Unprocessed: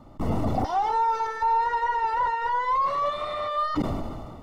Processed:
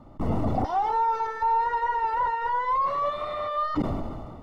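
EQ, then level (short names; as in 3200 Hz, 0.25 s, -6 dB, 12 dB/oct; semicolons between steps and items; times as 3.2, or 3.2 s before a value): high shelf 3300 Hz -9 dB; 0.0 dB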